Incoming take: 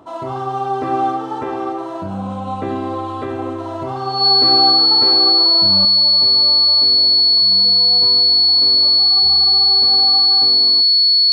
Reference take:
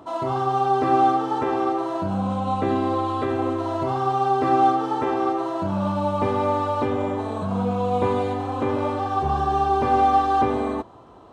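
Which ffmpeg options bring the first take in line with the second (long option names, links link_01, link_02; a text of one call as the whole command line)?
ffmpeg -i in.wav -af "bandreject=frequency=4400:width=30,asetnsamples=nb_out_samples=441:pad=0,asendcmd='5.85 volume volume 10.5dB',volume=0dB" out.wav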